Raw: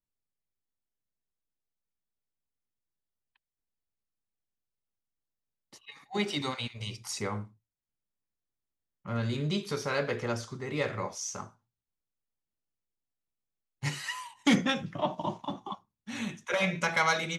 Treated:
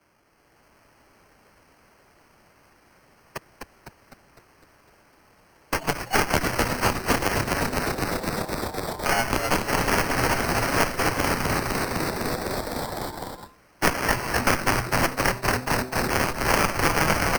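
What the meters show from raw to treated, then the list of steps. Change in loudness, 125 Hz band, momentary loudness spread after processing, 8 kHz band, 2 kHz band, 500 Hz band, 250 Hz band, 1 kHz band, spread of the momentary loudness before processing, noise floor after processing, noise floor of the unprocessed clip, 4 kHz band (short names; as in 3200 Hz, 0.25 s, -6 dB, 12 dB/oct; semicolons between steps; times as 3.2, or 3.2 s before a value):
+8.0 dB, +8.0 dB, 8 LU, +11.5 dB, +10.5 dB, +9.0 dB, +5.5 dB, +12.0 dB, 16 LU, -59 dBFS, under -85 dBFS, +7.5 dB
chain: minimum comb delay 4 ms; HPF 770 Hz 12 dB/oct; bell 3900 Hz +8 dB 0.74 oct; comb 7.3 ms, depth 97%; dynamic EQ 5400 Hz, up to -3 dB, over -42 dBFS, Q 0.78; AGC gain up to 6.5 dB; in parallel at +3 dB: limiter -17.5 dBFS, peak gain reduction 11 dB; on the sum: one-sided clip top -13 dBFS; sample-and-hold 12×; added harmonics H 3 -8 dB, 4 -12 dB, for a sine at -5.5 dBFS; on a send: frequency-shifting echo 0.253 s, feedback 58%, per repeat -130 Hz, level -4.5 dB; on the sum: three-band squash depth 100%; gain +4 dB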